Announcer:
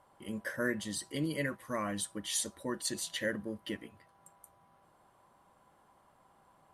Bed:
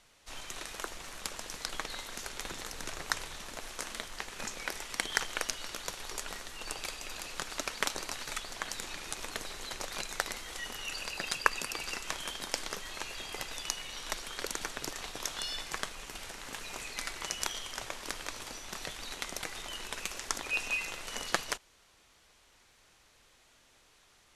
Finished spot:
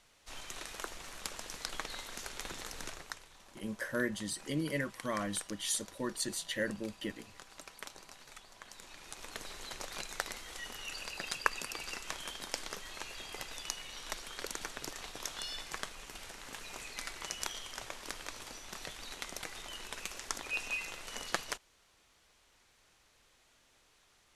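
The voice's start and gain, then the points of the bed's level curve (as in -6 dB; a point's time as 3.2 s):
3.35 s, -0.5 dB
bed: 2.85 s -2.5 dB
3.22 s -15 dB
8.6 s -15 dB
9.49 s -4 dB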